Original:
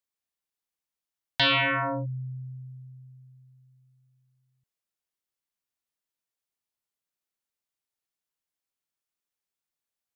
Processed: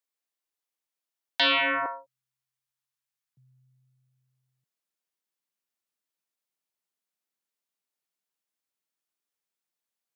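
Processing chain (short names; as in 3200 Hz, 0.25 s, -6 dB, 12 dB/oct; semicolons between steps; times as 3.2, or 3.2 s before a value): HPF 260 Hz 24 dB/oct, from 1.86 s 790 Hz, from 3.37 s 150 Hz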